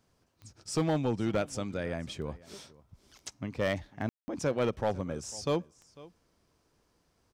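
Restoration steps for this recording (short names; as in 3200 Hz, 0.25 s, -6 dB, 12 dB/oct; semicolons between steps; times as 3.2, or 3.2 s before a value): clip repair -22 dBFS; de-click; room tone fill 4.09–4.28; inverse comb 0.498 s -21.5 dB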